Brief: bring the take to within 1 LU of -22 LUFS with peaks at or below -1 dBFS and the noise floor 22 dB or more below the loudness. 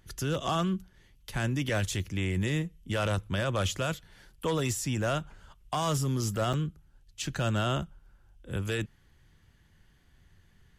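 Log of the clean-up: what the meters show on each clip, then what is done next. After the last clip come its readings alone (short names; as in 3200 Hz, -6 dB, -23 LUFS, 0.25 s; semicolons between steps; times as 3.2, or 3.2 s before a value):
dropouts 1; longest dropout 6.3 ms; loudness -31.5 LUFS; peak -19.5 dBFS; loudness target -22.0 LUFS
-> interpolate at 6.53, 6.3 ms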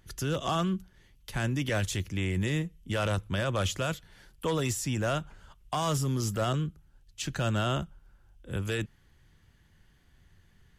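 dropouts 0; loudness -31.5 LUFS; peak -19.5 dBFS; loudness target -22.0 LUFS
-> gain +9.5 dB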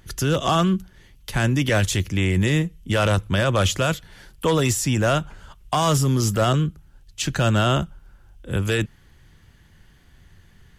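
loudness -22.0 LUFS; peak -10.0 dBFS; noise floor -54 dBFS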